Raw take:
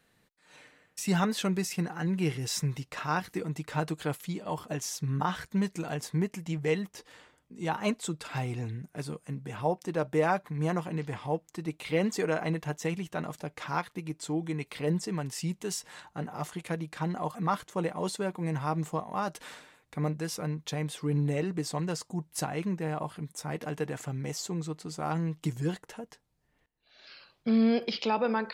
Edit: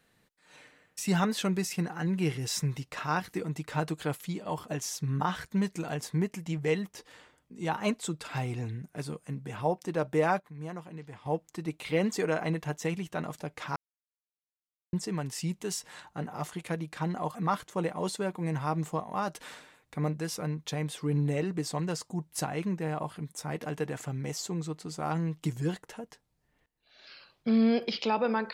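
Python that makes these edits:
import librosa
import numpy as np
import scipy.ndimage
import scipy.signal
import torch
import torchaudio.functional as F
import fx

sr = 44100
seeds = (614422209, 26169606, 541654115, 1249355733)

y = fx.edit(x, sr, fx.clip_gain(start_s=10.4, length_s=0.86, db=-10.0),
    fx.silence(start_s=13.76, length_s=1.17), tone=tone)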